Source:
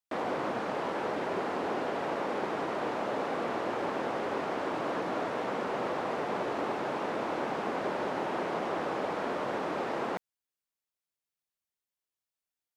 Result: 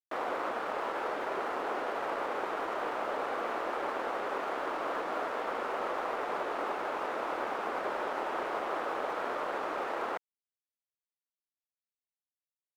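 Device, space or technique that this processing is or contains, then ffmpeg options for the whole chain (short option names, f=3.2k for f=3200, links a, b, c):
pocket radio on a weak battery: -af "highpass=400,lowpass=3.7k,aeval=exprs='sgn(val(0))*max(abs(val(0))-0.00316,0)':c=same,equalizer=f=1.3k:t=o:w=0.46:g=4.5"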